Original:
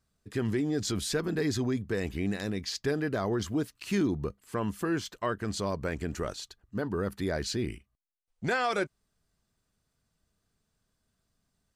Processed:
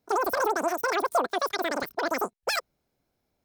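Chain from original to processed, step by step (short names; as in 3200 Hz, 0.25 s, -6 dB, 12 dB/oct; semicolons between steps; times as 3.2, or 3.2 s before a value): dynamic EQ 150 Hz, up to +8 dB, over -45 dBFS, Q 0.81; wide varispeed 3.41×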